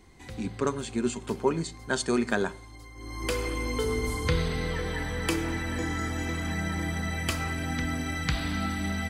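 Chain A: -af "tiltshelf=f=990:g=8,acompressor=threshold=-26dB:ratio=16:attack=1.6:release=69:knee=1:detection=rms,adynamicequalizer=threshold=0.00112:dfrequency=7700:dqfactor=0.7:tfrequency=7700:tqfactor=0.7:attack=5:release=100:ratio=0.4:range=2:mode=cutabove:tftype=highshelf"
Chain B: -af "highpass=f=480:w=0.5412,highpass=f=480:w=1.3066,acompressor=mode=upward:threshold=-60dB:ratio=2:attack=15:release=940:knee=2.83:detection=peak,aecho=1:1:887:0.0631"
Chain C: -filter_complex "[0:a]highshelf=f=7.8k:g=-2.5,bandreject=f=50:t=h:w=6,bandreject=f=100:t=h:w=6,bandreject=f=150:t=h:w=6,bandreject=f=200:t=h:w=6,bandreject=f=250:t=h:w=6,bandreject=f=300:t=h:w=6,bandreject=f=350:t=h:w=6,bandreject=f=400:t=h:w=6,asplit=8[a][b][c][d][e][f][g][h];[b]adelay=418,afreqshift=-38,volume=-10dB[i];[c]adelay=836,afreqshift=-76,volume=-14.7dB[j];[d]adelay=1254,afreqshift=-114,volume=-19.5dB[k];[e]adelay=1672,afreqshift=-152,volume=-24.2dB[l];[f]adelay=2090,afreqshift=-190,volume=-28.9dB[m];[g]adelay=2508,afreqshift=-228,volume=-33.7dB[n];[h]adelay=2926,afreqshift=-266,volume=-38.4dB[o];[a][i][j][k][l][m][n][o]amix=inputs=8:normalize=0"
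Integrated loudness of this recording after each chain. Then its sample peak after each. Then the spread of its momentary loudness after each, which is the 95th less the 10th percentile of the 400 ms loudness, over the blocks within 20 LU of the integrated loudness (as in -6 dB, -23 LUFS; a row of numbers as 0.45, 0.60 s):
-33.0, -34.0, -30.5 LUFS; -19.5, -12.5, -9.5 dBFS; 3, 6, 5 LU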